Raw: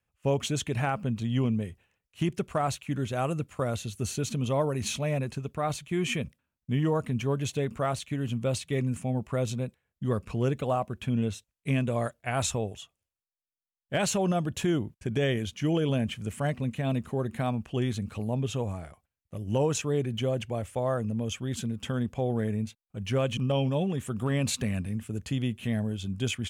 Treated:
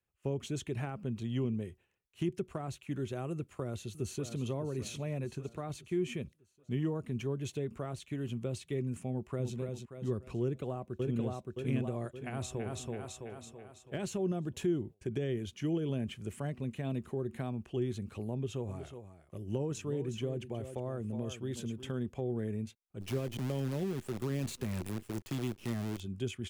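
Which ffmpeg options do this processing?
-filter_complex "[0:a]asplit=2[s0][s1];[s1]afade=t=in:st=3.34:d=0.01,afade=t=out:st=4.4:d=0.01,aecho=0:1:600|1200|1800|2400|3000:0.266073|0.119733|0.0538797|0.0242459|0.0109106[s2];[s0][s2]amix=inputs=2:normalize=0,asplit=2[s3][s4];[s4]afade=t=in:st=9.1:d=0.01,afade=t=out:st=9.56:d=0.01,aecho=0:1:290|580|870|1160|1450:0.501187|0.200475|0.08019|0.032076|0.0128304[s5];[s3][s5]amix=inputs=2:normalize=0,asplit=2[s6][s7];[s7]afade=t=in:st=10.42:d=0.01,afade=t=out:st=11.24:d=0.01,aecho=0:1:570|1140|1710|2280|2850|3420:0.794328|0.357448|0.160851|0.0723832|0.0325724|0.0146576[s8];[s6][s8]amix=inputs=2:normalize=0,asplit=2[s9][s10];[s10]afade=t=in:st=12.19:d=0.01,afade=t=out:st=12.72:d=0.01,aecho=0:1:330|660|990|1320|1650|1980|2310:0.668344|0.334172|0.167086|0.083543|0.0417715|0.0208857|0.0104429[s11];[s9][s11]amix=inputs=2:normalize=0,asettb=1/sr,asplit=3[s12][s13][s14];[s12]atrim=end=18.324[s15];[s13]atrim=start=18.32:end=21.91,asetpts=PTS-STARTPTS,afade=t=in:d=0.004:c=qsin,afade=t=out:st=3.586:d=0.004:c=qsin,aecho=1:1:365:0.251,atrim=end_sample=158319[s16];[s14]atrim=start=21.906[s17];[s15][s16]acrossfade=d=0.004:c1=hsin:c2=qsin[s18];[s18][s17]acrossfade=d=0.004:c1=qsin:c2=hsin,asplit=3[s19][s20][s21];[s19]afade=t=out:st=23:d=0.02[s22];[s20]acrusher=bits=6:dc=4:mix=0:aa=0.000001,afade=t=in:st=23:d=0.02,afade=t=out:st=25.99:d=0.02[s23];[s21]afade=t=in:st=25.99:d=0.02[s24];[s22][s23][s24]amix=inputs=3:normalize=0,equalizer=f=370:w=4.2:g=10,acrossover=split=350[s25][s26];[s26]acompressor=threshold=0.0224:ratio=6[s27];[s25][s27]amix=inputs=2:normalize=0,volume=0.422"

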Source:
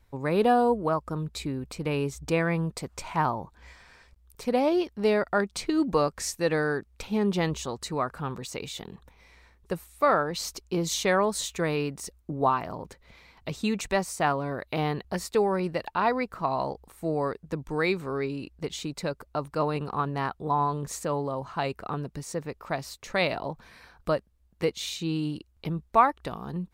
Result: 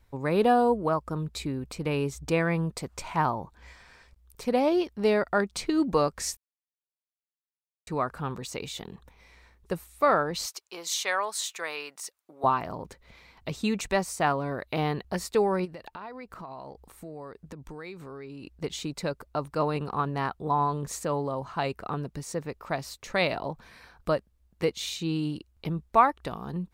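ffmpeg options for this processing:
-filter_complex "[0:a]asettb=1/sr,asplit=3[s0][s1][s2];[s0]atrim=end=10.464[s3];[s1]atrim=start=10.46:end=12.44,asetpts=PTS-STARTPTS,afade=t=in:d=0.004:c=qsin,afade=t=out:st=1.976:d=0.004:c=qsin,highpass=870[s4];[s2]atrim=start=12.436[s5];[s3][s4]acrossfade=d=0.004:c1=hsin:c2=qsin[s6];[s6][s5]acrossfade=d=0.004:c1=qsin:c2=hsin,asplit=3[s7][s8][s9];[s7]afade=t=out:st=15.64:d=0.02[s10];[s8]acompressor=threshold=0.0112:ratio=5:attack=3.2:release=140:knee=1:detection=peak,afade=t=in:st=15.64:d=0.02,afade=t=out:st=18.44:d=0.02[s11];[s9]afade=t=in:st=18.44:d=0.02[s12];[s10][s11][s12]amix=inputs=3:normalize=0,asplit=3[s13][s14][s15];[s13]atrim=end=6.37,asetpts=PTS-STARTPTS,afade=t=out:st=6.366:d=0.004:c=hsin[s16];[s14]atrim=start=6.37:end=7.87,asetpts=PTS-STARTPTS,volume=0[s17];[s15]atrim=start=7.87,asetpts=PTS-STARTPTS,afade=t=in:d=0.004:c=hsin[s18];[s16][s17][s18]concat=n=3:v=0:a=1"

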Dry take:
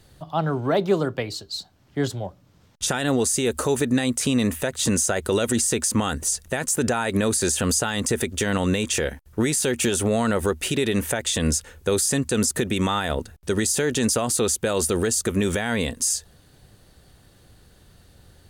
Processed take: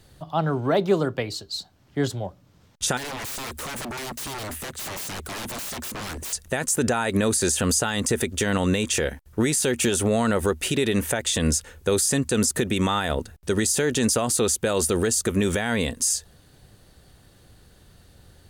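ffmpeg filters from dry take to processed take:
-filter_complex "[0:a]asettb=1/sr,asplit=3[s0][s1][s2];[s0]atrim=end=2.974[s3];[s1]atrim=start=2.97:end=6.33,asetpts=PTS-STARTPTS,afade=t=in:d=0.004:c=qsin,afade=t=out:st=3.356:d=0.004:c=qsin,aeval=exprs='0.0398*(abs(mod(val(0)/0.0398+3,4)-2)-1)':c=same[s4];[s2]atrim=start=6.326[s5];[s3][s4]acrossfade=d=0.004:c1=hsin:c2=qsin[s6];[s6][s5]acrossfade=d=0.004:c1=qsin:c2=hsin"

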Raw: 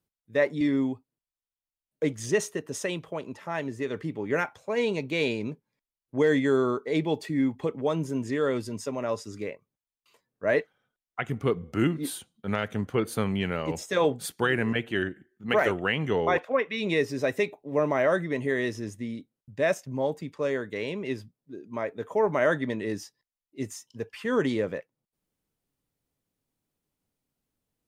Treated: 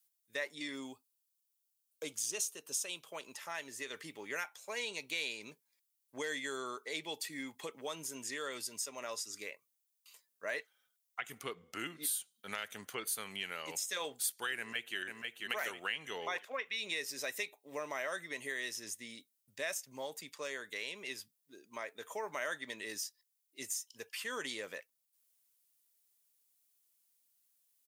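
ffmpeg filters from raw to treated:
-filter_complex "[0:a]asettb=1/sr,asplit=3[s0][s1][s2];[s0]atrim=end=0.754[s3];[s1]atrim=start=0.75:end=3.11,asetpts=PTS-STARTPTS,afade=t=in:d=0.004:c=qsin,afade=t=out:st=2.356:d=0.004:c=qsin,equalizer=f=1900:t=o:w=0.26:g=-13.5[s4];[s2]atrim=start=3.106[s5];[s3][s4]acrossfade=d=0.004:c1=hsin:c2=qsin[s6];[s6][s5]acrossfade=d=0.004:c1=qsin:c2=hsin,asettb=1/sr,asplit=3[s7][s8][s9];[s7]atrim=end=11.434[s10];[s8]atrim=start=11.43:end=12.02,asetpts=PTS-STARTPTS,afade=t=in:d=0.004:c=qsin,afade=t=out:st=0.586:d=0.004:c=qsin,highshelf=f=6400:g=-10[s11];[s9]atrim=start=12.016[s12];[s10][s11]acrossfade=d=0.004:c1=hsin:c2=qsin[s13];[s13][s12]acrossfade=d=0.004:c1=qsin:c2=hsin,asplit=2[s14][s15];[s15]afade=t=in:st=14.58:d=0.01,afade=t=out:st=14.98:d=0.01,aecho=0:1:490|980|1470|1960|2450:0.473151|0.189261|0.0757042|0.0302817|0.0121127[s16];[s14][s16]amix=inputs=2:normalize=0,aderivative,acompressor=threshold=0.00316:ratio=2,volume=3.16"

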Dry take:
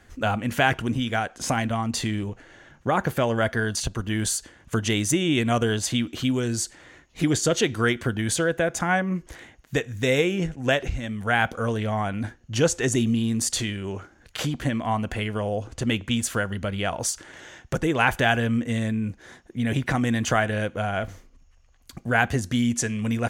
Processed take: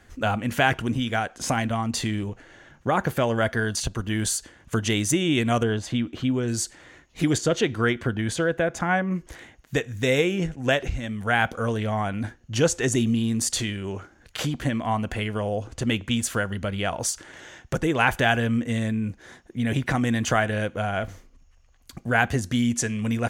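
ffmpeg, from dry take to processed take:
-filter_complex "[0:a]asettb=1/sr,asplit=3[s0][s1][s2];[s0]atrim=end=5.634[s3];[s1]atrim=start=5.63:end=6.48,asetpts=PTS-STARTPTS,afade=t=in:d=0.004:c=qsin,afade=t=out:st=0.846:d=0.004:c=qsin,lowpass=f=1800:p=1[s4];[s2]atrim=start=6.476[s5];[s3][s4]acrossfade=d=0.004:c1=hsin:c2=qsin[s6];[s6][s5]acrossfade=d=0.004:c1=qsin:c2=hsin,asettb=1/sr,asplit=3[s7][s8][s9];[s7]atrim=end=7.384[s10];[s8]atrim=start=7.38:end=9.11,asetpts=PTS-STARTPTS,afade=t=in:d=0.004:c=qsin,afade=t=out:st=1.726:d=0.004:c=qsin,highshelf=f=5700:g=-11.5[s11];[s9]atrim=start=9.106[s12];[s10][s11]acrossfade=d=0.004:c1=hsin:c2=qsin[s13];[s13][s12]acrossfade=d=0.004:c1=qsin:c2=hsin"

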